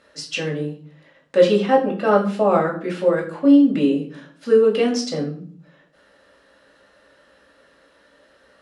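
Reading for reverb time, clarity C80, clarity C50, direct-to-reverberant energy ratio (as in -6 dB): 0.50 s, 14.0 dB, 9.5 dB, -2.0 dB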